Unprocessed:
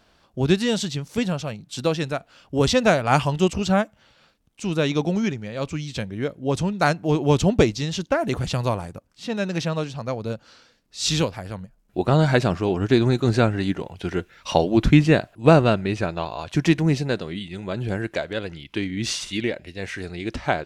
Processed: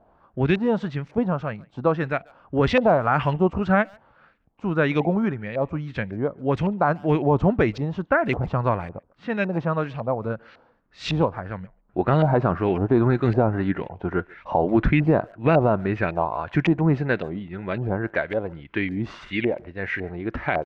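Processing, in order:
auto-filter low-pass saw up 1.8 Hz 700–2,400 Hz
brickwall limiter −9 dBFS, peak gain reduction 9.5 dB
far-end echo of a speakerphone 140 ms, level −25 dB

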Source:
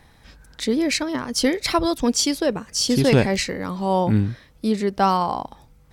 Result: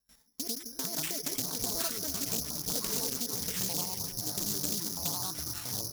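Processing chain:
slices reordered back to front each 82 ms, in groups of 5
source passing by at 0:01.79, 13 m/s, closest 1.7 metres
noise gate with hold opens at −57 dBFS
low-pass filter 2,500 Hz 12 dB per octave
low-shelf EQ 98 Hz −7 dB
comb filter 4.5 ms, depth 71%
downward compressor 12 to 1, threshold −43 dBFS, peak gain reduction 27 dB
echo through a band-pass that steps 165 ms, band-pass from 270 Hz, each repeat 0.7 octaves, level −6 dB
delay with pitch and tempo change per echo 248 ms, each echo −7 semitones, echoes 3
bad sample-rate conversion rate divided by 8×, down none, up zero stuff
highs frequency-modulated by the lows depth 0.51 ms
level +3.5 dB

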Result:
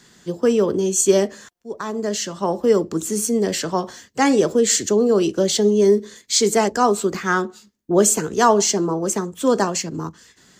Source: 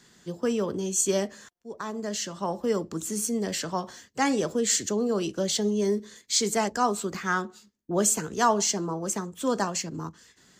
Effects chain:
dynamic equaliser 390 Hz, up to +6 dB, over −40 dBFS, Q 1.5
level +6 dB

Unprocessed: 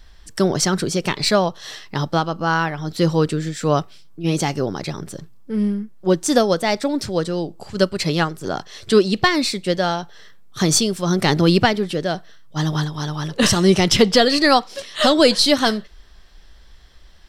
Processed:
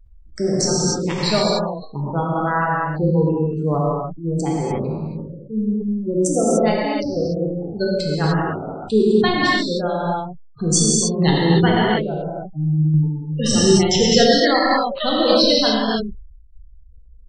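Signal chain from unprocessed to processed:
adaptive Wiener filter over 25 samples
high-shelf EQ 2,200 Hz +6.5 dB
gate on every frequency bin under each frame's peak −15 dB strong
dynamic equaliser 4,700 Hz, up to −7 dB, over −36 dBFS, Q 6.3
reverb whose tail is shaped and stops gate 320 ms flat, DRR −6 dB
shaped tremolo saw down 1.7 Hz, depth 30%
level that may fall only so fast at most 64 dB per second
level −5 dB

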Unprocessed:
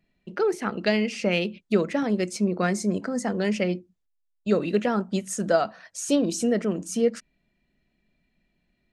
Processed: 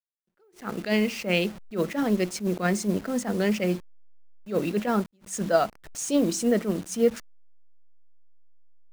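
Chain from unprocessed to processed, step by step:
hold until the input has moved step −38 dBFS
level that may rise only so fast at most 210 dB per second
level +1 dB

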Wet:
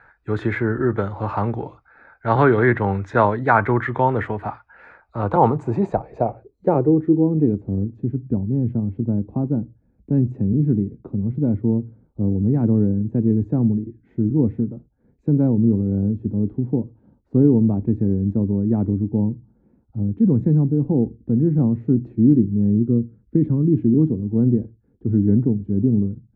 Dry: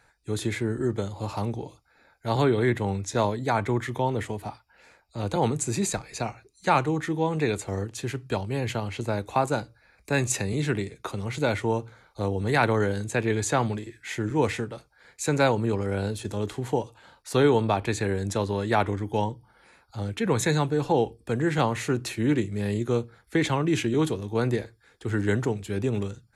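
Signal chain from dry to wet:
0:22.85–0:23.72: parametric band 740 Hz −14 dB 0.36 octaves
low-pass filter sweep 1,500 Hz → 240 Hz, 0:04.92–0:07.64
level +6 dB

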